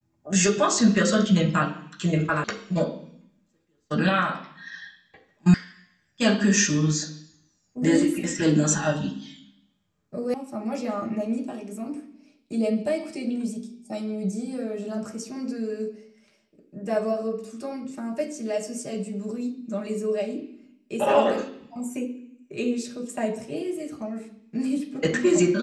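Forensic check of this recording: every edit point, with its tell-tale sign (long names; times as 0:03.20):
0:02.44: cut off before it has died away
0:05.54: cut off before it has died away
0:10.34: cut off before it has died away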